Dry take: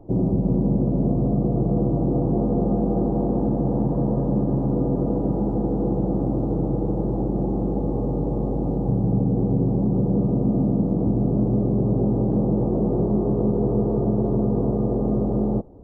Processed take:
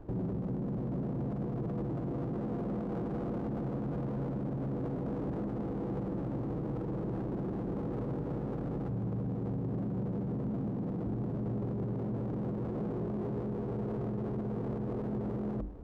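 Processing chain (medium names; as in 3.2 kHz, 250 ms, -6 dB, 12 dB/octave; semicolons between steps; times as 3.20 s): bass shelf 63 Hz +7.5 dB; hum notches 50/100/150/200/250/300/350 Hz; peak limiter -25 dBFS, peak gain reduction 15 dB; sliding maximum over 17 samples; trim -3.5 dB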